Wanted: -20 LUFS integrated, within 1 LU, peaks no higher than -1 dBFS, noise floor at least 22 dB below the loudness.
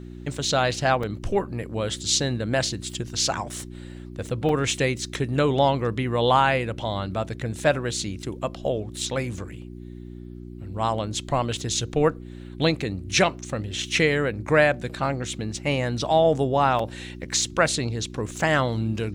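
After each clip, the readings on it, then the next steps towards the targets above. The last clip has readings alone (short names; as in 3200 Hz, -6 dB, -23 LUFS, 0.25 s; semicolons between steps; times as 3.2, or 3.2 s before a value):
dropouts 3; longest dropout 3.7 ms; hum 60 Hz; harmonics up to 360 Hz; hum level -37 dBFS; loudness -24.5 LUFS; peak -6.5 dBFS; loudness target -20.0 LUFS
-> interpolate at 1.03/4.49/16.79, 3.7 ms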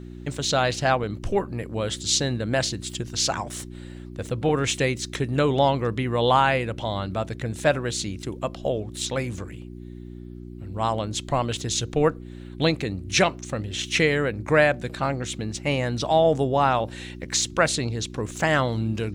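dropouts 0; hum 60 Hz; harmonics up to 360 Hz; hum level -37 dBFS
-> de-hum 60 Hz, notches 6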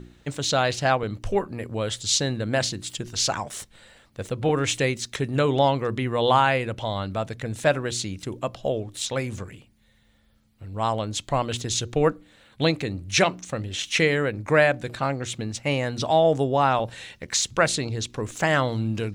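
hum none; loudness -24.5 LUFS; peak -6.5 dBFS; loudness target -20.0 LUFS
-> gain +4.5 dB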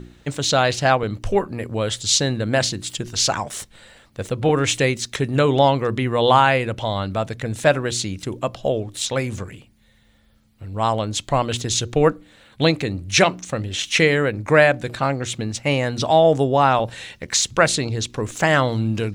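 loudness -20.0 LUFS; peak -2.0 dBFS; noise floor -55 dBFS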